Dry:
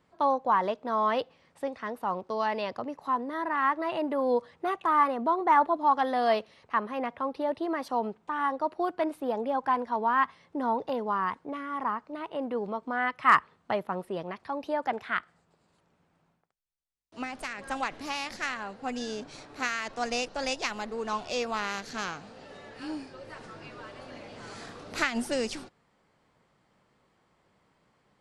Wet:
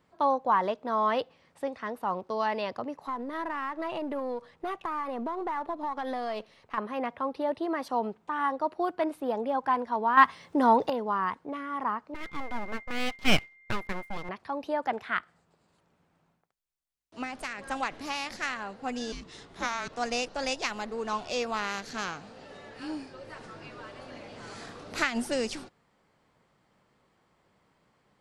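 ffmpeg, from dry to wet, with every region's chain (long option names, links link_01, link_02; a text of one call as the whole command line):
ffmpeg -i in.wav -filter_complex "[0:a]asettb=1/sr,asplit=3[link_01][link_02][link_03];[link_01]atrim=end=3.074[link_04];[link_02]atrim=start=3.07:end=6.78,asetpts=PTS-STARTPTS,afade=type=in:duration=0.004:curve=qsin,afade=type=out:start_time=3.706:duration=0.004:curve=qsin,aeval=exprs='if(lt(val(0),0),0.708*val(0),val(0))':channel_layout=same,acompressor=threshold=-28dB:ratio=10:attack=3.2:release=140:knee=1:detection=peak[link_05];[link_03]atrim=start=6.776[link_06];[link_04][link_05]acrossfade=duration=0.004:curve1=hsin:curve2=qsin[link_07];[link_07][link_06]acrossfade=duration=0.004:curve1=qsin:curve2=hsin,asettb=1/sr,asplit=3[link_08][link_09][link_10];[link_08]atrim=end=10.174[link_11];[link_09]atrim=start=10.17:end=10.9,asetpts=PTS-STARTPTS,afade=type=in:duration=0.004:curve=qsin,afade=type=out:start_time=0.726:duration=0.004:curve=qsin,highshelf=frequency=3800:gain=7,acontrast=78[link_12];[link_10]atrim=start=10.896[link_13];[link_11][link_12]acrossfade=duration=0.004:curve1=hsin:curve2=qsin[link_14];[link_14][link_13]acrossfade=duration=0.004:curve1=qsin:curve2=hsin,asettb=1/sr,asplit=3[link_15][link_16][link_17];[link_15]atrim=end=12.144[link_18];[link_16]atrim=start=12.14:end=14.29,asetpts=PTS-STARTPTS,afade=type=in:duration=0.004:curve=qsin,afade=type=out:start_time=2.146:duration=0.004:curve=qsin,aeval=exprs='abs(val(0))':channel_layout=same,aeval=exprs='val(0)+0.00631*sin(2*PI*2100*n/s)':channel_layout=same,agate=range=-33dB:threshold=-40dB:ratio=3:release=100:detection=peak[link_19];[link_17]atrim=start=14.286[link_20];[link_18][link_19]acrossfade=duration=0.004:curve1=hsin:curve2=qsin[link_21];[link_21][link_20]acrossfade=duration=0.004:curve1=qsin:curve2=hsin,asettb=1/sr,asplit=3[link_22][link_23][link_24];[link_22]atrim=end=19.124[link_25];[link_23]atrim=start=19.12:end=19.92,asetpts=PTS-STARTPTS,afade=type=in:duration=0.004:curve=qsin,afade=type=out:start_time=0.796:duration=0.004:curve=qsin,equalizer=frequency=310:width=0.59:gain=-6,afreqshift=-470[link_26];[link_24]atrim=start=19.916[link_27];[link_25][link_26]acrossfade=duration=0.004:curve1=hsin:curve2=qsin[link_28];[link_28][link_27]acrossfade=duration=0.004:curve1=qsin:curve2=hsin" out.wav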